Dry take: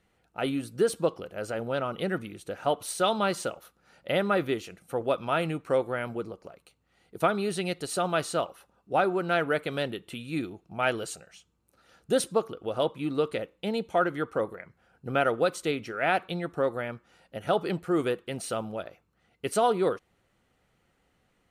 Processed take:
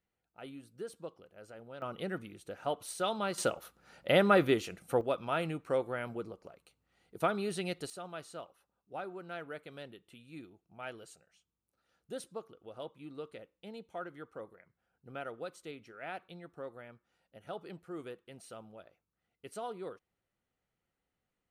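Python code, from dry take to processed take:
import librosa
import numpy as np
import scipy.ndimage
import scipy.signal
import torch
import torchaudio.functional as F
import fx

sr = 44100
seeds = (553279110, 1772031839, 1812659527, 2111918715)

y = fx.gain(x, sr, db=fx.steps((0.0, -18.0), (1.82, -8.0), (3.38, 1.0), (5.01, -6.0), (7.9, -17.0)))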